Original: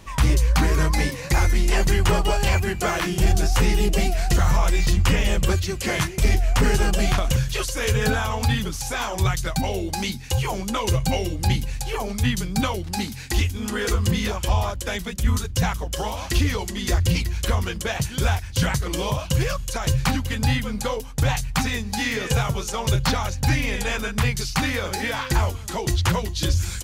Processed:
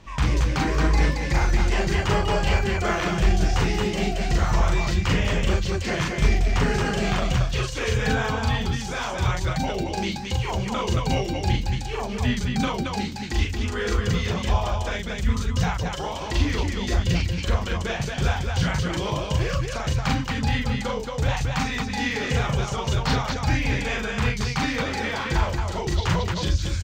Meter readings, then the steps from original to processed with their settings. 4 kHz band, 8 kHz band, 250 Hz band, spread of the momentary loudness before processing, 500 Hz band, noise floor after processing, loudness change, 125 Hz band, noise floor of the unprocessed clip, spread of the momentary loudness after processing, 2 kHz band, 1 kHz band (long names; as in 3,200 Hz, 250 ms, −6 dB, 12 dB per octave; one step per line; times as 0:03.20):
−2.0 dB, −6.5 dB, −0.5 dB, 6 LU, −0.5 dB, −30 dBFS, −1.5 dB, −1.5 dB, −33 dBFS, 4 LU, −0.5 dB, 0.0 dB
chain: moving average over 4 samples
loudspeakers that aren't time-aligned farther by 14 metres −2 dB, 77 metres −3 dB
level −3.5 dB